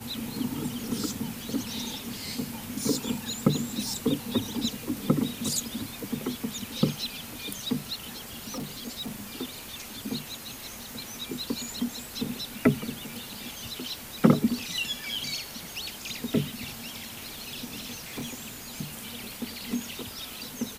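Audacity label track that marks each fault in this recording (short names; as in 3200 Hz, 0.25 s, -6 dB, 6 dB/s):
8.470000	9.130000	clipped -30.5 dBFS
17.910000	18.560000	clipped -30.5 dBFS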